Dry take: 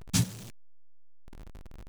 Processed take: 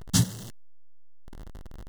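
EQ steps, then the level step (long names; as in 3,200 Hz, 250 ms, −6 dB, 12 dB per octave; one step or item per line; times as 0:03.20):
Butterworth band-reject 2,400 Hz, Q 3.9
+4.0 dB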